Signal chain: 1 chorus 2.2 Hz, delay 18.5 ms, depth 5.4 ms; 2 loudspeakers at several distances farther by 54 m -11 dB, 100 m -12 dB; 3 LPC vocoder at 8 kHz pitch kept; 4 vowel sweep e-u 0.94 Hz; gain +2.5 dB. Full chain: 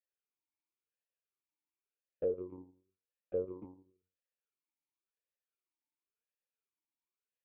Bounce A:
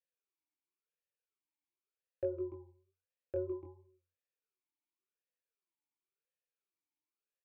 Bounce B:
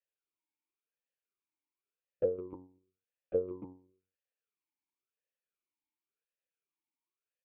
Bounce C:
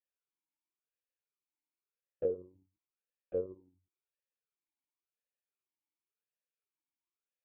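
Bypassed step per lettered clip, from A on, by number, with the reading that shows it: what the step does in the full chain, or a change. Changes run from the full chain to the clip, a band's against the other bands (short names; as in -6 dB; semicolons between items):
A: 3, 500 Hz band -5.5 dB; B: 1, loudness change +3.0 LU; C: 2, momentary loudness spread change -7 LU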